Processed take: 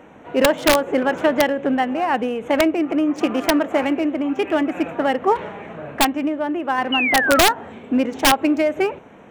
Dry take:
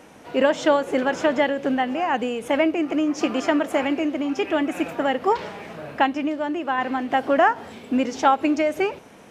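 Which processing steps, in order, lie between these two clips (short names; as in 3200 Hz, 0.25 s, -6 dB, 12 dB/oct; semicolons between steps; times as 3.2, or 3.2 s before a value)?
Wiener smoothing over 9 samples; painted sound fall, 6.92–7.42, 1200–3000 Hz -23 dBFS; wrapped overs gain 9.5 dB; gain +3 dB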